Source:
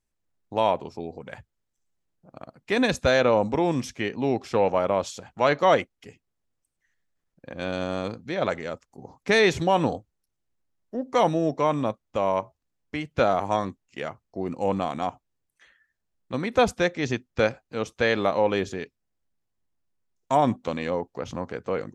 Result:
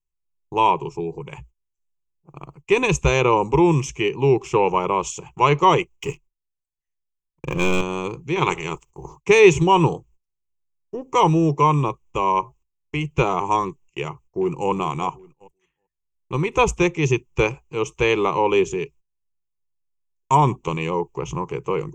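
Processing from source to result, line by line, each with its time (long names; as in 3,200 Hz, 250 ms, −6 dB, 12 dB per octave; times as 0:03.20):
0:05.96–0:07.81: leveller curve on the samples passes 3
0:08.35–0:09.15: ceiling on every frequency bin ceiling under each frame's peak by 16 dB
0:14.02–0:14.69: delay throw 390 ms, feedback 35%, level −16 dB
whole clip: low-shelf EQ 86 Hz +10.5 dB; noise gate −51 dBFS, range −19 dB; EQ curve with evenly spaced ripples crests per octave 0.72, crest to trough 18 dB; level +1.5 dB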